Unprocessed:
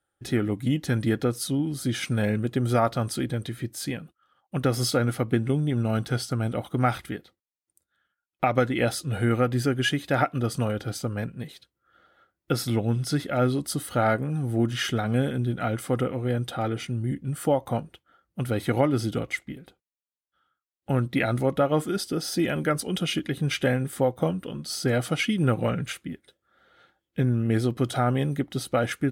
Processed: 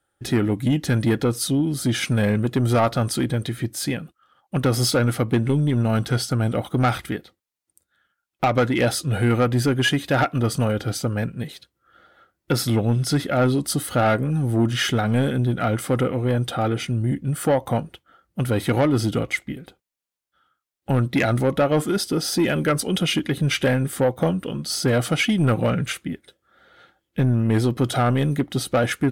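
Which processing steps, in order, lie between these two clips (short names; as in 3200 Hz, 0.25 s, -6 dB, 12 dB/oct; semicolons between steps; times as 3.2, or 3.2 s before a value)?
soft clip -18.5 dBFS, distortion -15 dB; wow and flutter 22 cents; gain +6.5 dB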